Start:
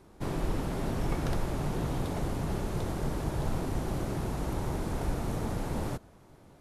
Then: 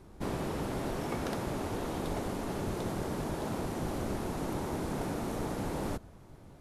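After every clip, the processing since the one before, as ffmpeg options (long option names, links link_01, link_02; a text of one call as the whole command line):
ffmpeg -i in.wav -af "afftfilt=real='re*lt(hypot(re,im),0.141)':imag='im*lt(hypot(re,im),0.141)':win_size=1024:overlap=0.75,lowshelf=frequency=180:gain=6" out.wav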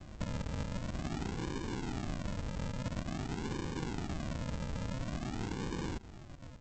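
ffmpeg -i in.wav -af "aresample=16000,acrusher=samples=34:mix=1:aa=0.000001:lfo=1:lforange=20.4:lforate=0.48,aresample=44100,acompressor=threshold=-41dB:ratio=2.5,volume=3.5dB" out.wav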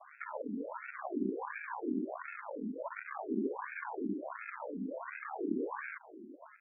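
ffmpeg -i in.wav -af "afftfilt=real='re*between(b*sr/1024,280*pow(1900/280,0.5+0.5*sin(2*PI*1.4*pts/sr))/1.41,280*pow(1900/280,0.5+0.5*sin(2*PI*1.4*pts/sr))*1.41)':imag='im*between(b*sr/1024,280*pow(1900/280,0.5+0.5*sin(2*PI*1.4*pts/sr))/1.41,280*pow(1900/280,0.5+0.5*sin(2*PI*1.4*pts/sr))*1.41)':win_size=1024:overlap=0.75,volume=9.5dB" out.wav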